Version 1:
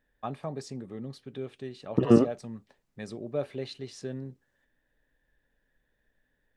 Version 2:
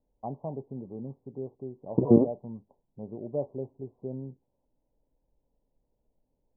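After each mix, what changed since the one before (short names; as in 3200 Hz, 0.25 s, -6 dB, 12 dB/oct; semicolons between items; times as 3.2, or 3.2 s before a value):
master: add steep low-pass 1000 Hz 96 dB/oct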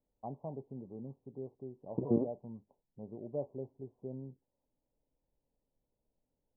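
first voice -6.5 dB; second voice -11.0 dB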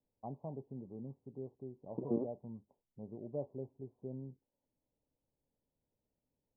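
second voice: add HPF 320 Hz 6 dB/oct; master: add bell 680 Hz -3 dB 2.1 oct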